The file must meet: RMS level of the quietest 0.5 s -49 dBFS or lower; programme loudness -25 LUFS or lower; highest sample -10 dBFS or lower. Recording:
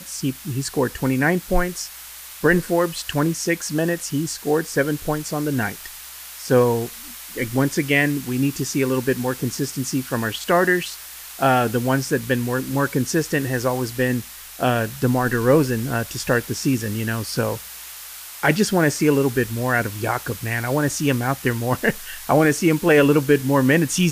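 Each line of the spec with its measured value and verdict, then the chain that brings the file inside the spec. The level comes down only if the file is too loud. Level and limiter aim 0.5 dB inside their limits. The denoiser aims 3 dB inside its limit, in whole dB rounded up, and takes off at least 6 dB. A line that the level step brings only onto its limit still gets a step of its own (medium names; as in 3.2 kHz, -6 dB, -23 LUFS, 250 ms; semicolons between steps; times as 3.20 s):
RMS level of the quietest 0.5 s -39 dBFS: fail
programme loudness -21.0 LUFS: fail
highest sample -5.0 dBFS: fail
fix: noise reduction 9 dB, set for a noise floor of -39 dBFS; trim -4.5 dB; peak limiter -10.5 dBFS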